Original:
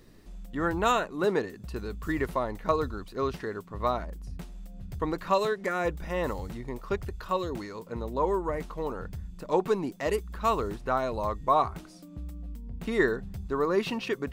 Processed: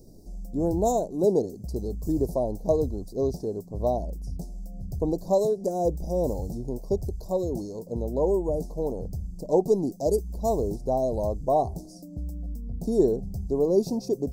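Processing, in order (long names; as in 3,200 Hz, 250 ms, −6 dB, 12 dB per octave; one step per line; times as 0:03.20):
elliptic band-stop filter 720–5,200 Hz, stop band 40 dB
level +5.5 dB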